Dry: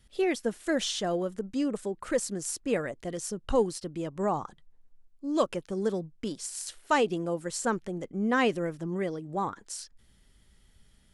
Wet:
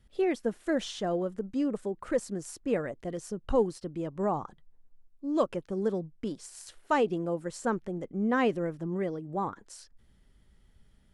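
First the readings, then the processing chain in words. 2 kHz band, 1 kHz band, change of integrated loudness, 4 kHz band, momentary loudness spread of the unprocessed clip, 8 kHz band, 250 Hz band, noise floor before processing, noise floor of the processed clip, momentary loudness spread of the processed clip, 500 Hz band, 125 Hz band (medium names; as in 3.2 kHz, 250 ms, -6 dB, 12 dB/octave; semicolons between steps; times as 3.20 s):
-4.0 dB, -1.5 dB, -1.0 dB, -7.5 dB, 9 LU, -9.5 dB, 0.0 dB, -62 dBFS, -63 dBFS, 11 LU, -0.5 dB, 0.0 dB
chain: treble shelf 2.3 kHz -10.5 dB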